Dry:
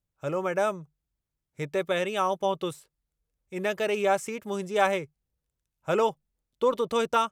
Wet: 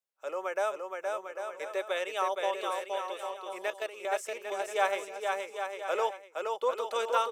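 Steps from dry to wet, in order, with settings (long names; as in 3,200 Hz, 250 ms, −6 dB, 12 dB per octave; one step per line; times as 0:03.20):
high-pass filter 460 Hz 24 dB per octave
0:03.70–0:04.13: output level in coarse steps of 14 dB
bouncing-ball delay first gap 470 ms, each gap 0.7×, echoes 5
level −4 dB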